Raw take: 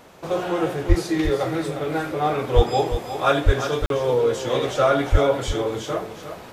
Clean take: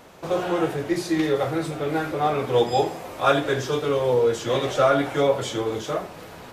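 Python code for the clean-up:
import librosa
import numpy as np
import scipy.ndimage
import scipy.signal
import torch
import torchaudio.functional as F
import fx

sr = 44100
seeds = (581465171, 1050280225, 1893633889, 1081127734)

y = fx.fix_deplosive(x, sr, at_s=(0.88, 2.55, 3.45, 5.11))
y = fx.fix_interpolate(y, sr, at_s=(3.86,), length_ms=42.0)
y = fx.fix_echo_inverse(y, sr, delay_ms=354, level_db=-9.5)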